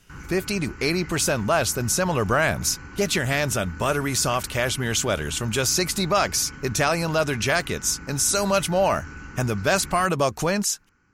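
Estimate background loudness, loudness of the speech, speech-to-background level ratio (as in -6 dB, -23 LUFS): -40.5 LUFS, -23.0 LUFS, 17.5 dB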